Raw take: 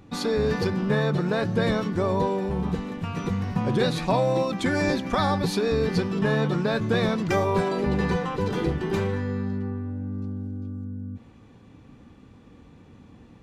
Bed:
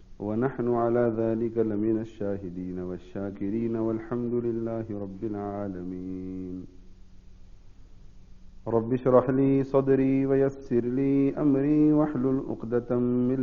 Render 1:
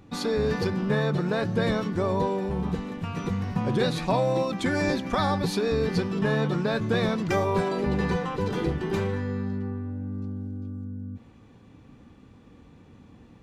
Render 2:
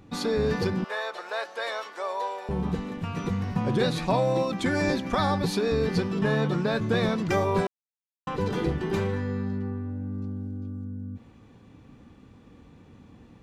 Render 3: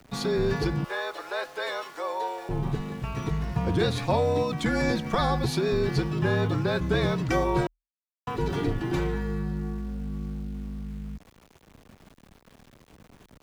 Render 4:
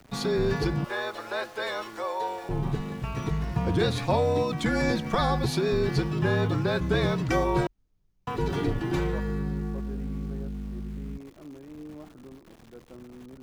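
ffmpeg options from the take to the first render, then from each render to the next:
ffmpeg -i in.wav -af "volume=-1.5dB" out.wav
ffmpeg -i in.wav -filter_complex "[0:a]asettb=1/sr,asplit=3[link_01][link_02][link_03];[link_01]atrim=end=0.844[link_04];[link_02]atrim=start=0.84:end=2.49,asetpts=PTS-STARTPTS,afade=type=in:duration=0.004:curve=qsin,afade=type=out:start_time=1.646:duration=0.004:curve=qsin,highpass=frequency=600:width=0.5412,highpass=frequency=600:width=1.3066[link_05];[link_03]atrim=start=2.486[link_06];[link_04][link_05]acrossfade=duration=0.004:curve1=hsin:curve2=qsin[link_07];[link_07][link_06]acrossfade=duration=0.004:curve1=qsin:curve2=hsin,asplit=3[link_08][link_09][link_10];[link_08]atrim=end=7.67,asetpts=PTS-STARTPTS,afade=type=out:start_time=7.666:duration=0.004:curve=hsin[link_11];[link_09]atrim=start=7.67:end=8.27,asetpts=PTS-STARTPTS,volume=0[link_12];[link_10]atrim=start=8.27,asetpts=PTS-STARTPTS,afade=type=in:duration=0.004:curve=hsin[link_13];[link_11][link_12][link_13]concat=n=3:v=0:a=1" out.wav
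ffmpeg -i in.wav -af "aeval=exprs='val(0)*gte(abs(val(0)),0.00422)':channel_layout=same,afreqshift=-40" out.wav
ffmpeg -i in.wav -i bed.wav -filter_complex "[1:a]volume=-21.5dB[link_01];[0:a][link_01]amix=inputs=2:normalize=0" out.wav

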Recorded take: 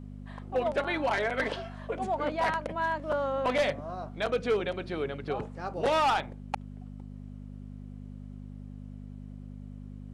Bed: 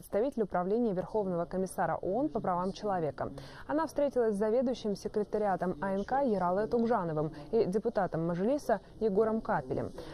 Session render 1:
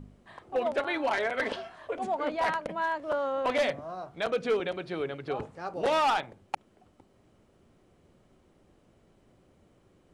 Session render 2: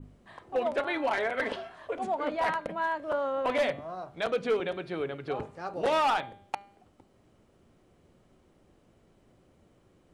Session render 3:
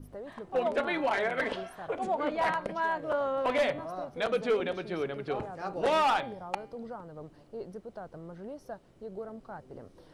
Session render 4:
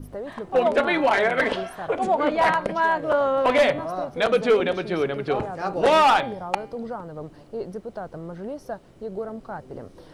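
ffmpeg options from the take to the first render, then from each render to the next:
ffmpeg -i in.wav -af "bandreject=frequency=50:width_type=h:width=4,bandreject=frequency=100:width_type=h:width=4,bandreject=frequency=150:width_type=h:width=4,bandreject=frequency=200:width_type=h:width=4,bandreject=frequency=250:width_type=h:width=4" out.wav
ffmpeg -i in.wav -af "bandreject=frequency=200.1:width_type=h:width=4,bandreject=frequency=400.2:width_type=h:width=4,bandreject=frequency=600.3:width_type=h:width=4,bandreject=frequency=800.4:width_type=h:width=4,bandreject=frequency=1000.5:width_type=h:width=4,bandreject=frequency=1200.6:width_type=h:width=4,bandreject=frequency=1400.7:width_type=h:width=4,bandreject=frequency=1600.8:width_type=h:width=4,bandreject=frequency=1800.9:width_type=h:width=4,bandreject=frequency=2001:width_type=h:width=4,bandreject=frequency=2201.1:width_type=h:width=4,bandreject=frequency=2401.2:width_type=h:width=4,bandreject=frequency=2601.3:width_type=h:width=4,bandreject=frequency=2801.4:width_type=h:width=4,bandreject=frequency=3001.5:width_type=h:width=4,bandreject=frequency=3201.6:width_type=h:width=4,bandreject=frequency=3401.7:width_type=h:width=4,bandreject=frequency=3601.8:width_type=h:width=4,bandreject=frequency=3801.9:width_type=h:width=4,bandreject=frequency=4002:width_type=h:width=4,bandreject=frequency=4202.1:width_type=h:width=4,bandreject=frequency=4402.2:width_type=h:width=4,adynamicequalizer=threshold=0.002:dfrequency=5600:dqfactor=1:tfrequency=5600:tqfactor=1:attack=5:release=100:ratio=0.375:range=2.5:mode=cutabove:tftype=bell" out.wav
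ffmpeg -i in.wav -i bed.wav -filter_complex "[1:a]volume=-12.5dB[link_01];[0:a][link_01]amix=inputs=2:normalize=0" out.wav
ffmpeg -i in.wav -af "volume=9dB" out.wav

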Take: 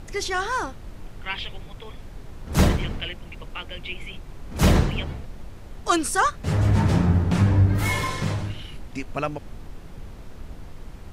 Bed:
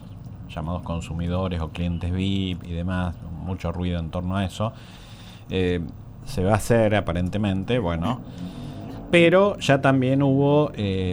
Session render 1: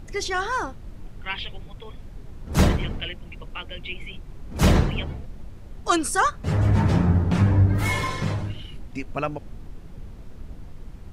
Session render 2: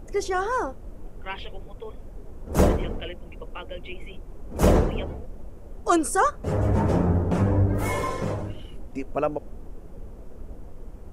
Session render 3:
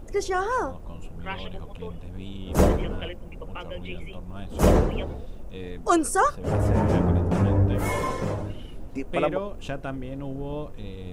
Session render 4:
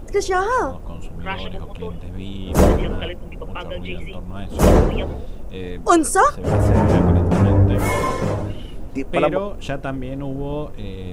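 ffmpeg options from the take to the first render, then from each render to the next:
ffmpeg -i in.wav -af "afftdn=noise_reduction=6:noise_floor=-41" out.wav
ffmpeg -i in.wav -af "equalizer=frequency=125:width_type=o:width=1:gain=-7,equalizer=frequency=500:width_type=o:width=1:gain=7,equalizer=frequency=2000:width_type=o:width=1:gain=-5,equalizer=frequency=4000:width_type=o:width=1:gain=-10" out.wav
ffmpeg -i in.wav -i bed.wav -filter_complex "[1:a]volume=-15dB[link_01];[0:a][link_01]amix=inputs=2:normalize=0" out.wav
ffmpeg -i in.wav -af "volume=6.5dB,alimiter=limit=-2dB:level=0:latency=1" out.wav

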